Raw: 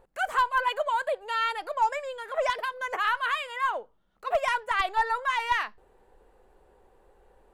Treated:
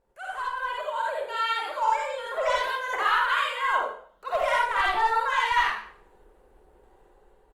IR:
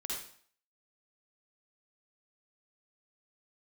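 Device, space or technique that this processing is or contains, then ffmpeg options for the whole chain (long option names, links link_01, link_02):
speakerphone in a meeting room: -filter_complex "[0:a]asettb=1/sr,asplit=3[link_01][link_02][link_03];[link_01]atrim=end=1.374[link_04];[link_02]atrim=start=1.37:end=1.96,asetpts=PTS-STARTPTS,afade=type=in:duration=0.004:curve=qsin,afade=type=out:start_time=0.586:duration=0.004:curve=qsin,lowshelf=frequency=490:gain=-5[link_05];[link_03]atrim=start=1.956[link_06];[link_04][link_05]acrossfade=duration=0.004:curve1=hsin:curve2=qsin[link_07];[link_07][link_06]acrossfade=duration=0.004:curve1=qsin:curve2=hsin[link_08];[1:a]atrim=start_sample=2205[link_09];[link_08][link_09]afir=irnorm=-1:irlink=0,asplit=2[link_10][link_11];[link_11]adelay=100,highpass=300,lowpass=3400,asoftclip=type=hard:threshold=-21.5dB,volume=-24dB[link_12];[link_10][link_12]amix=inputs=2:normalize=0,dynaudnorm=framelen=470:gausssize=5:maxgain=10dB,volume=-7dB" -ar 48000 -c:a libopus -b:a 32k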